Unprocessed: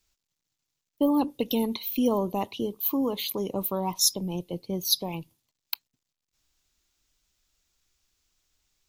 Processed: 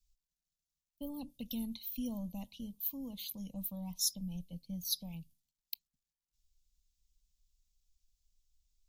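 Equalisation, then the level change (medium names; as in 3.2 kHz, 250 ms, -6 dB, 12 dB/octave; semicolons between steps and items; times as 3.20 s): amplifier tone stack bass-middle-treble 10-0-1; peaking EQ 350 Hz -12.5 dB 1 oct; static phaser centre 390 Hz, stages 6; +11.0 dB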